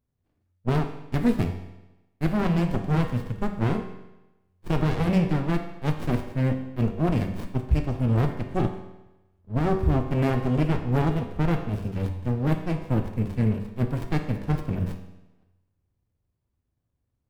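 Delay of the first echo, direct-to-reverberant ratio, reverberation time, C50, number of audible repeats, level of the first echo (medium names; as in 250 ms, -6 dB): no echo, 5.0 dB, 1.0 s, 8.0 dB, no echo, no echo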